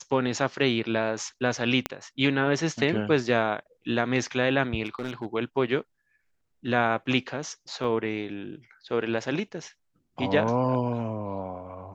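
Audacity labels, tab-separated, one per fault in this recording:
1.860000	1.860000	click −11 dBFS
4.860000	5.260000	clipping −25.5 dBFS
7.840000	7.840000	drop-out 3.6 ms

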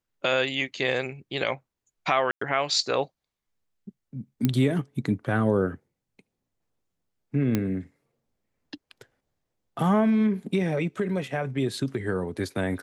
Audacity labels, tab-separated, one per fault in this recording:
2.310000	2.410000	drop-out 104 ms
4.450000	4.450000	click −10 dBFS
7.550000	7.550000	click −11 dBFS

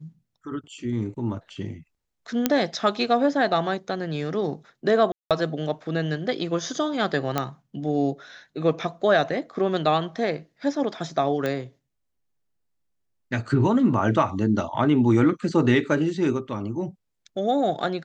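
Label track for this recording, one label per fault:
2.460000	2.460000	click −5 dBFS
5.120000	5.310000	drop-out 187 ms
7.380000	7.380000	click −9 dBFS
11.460000	11.460000	click −14 dBFS

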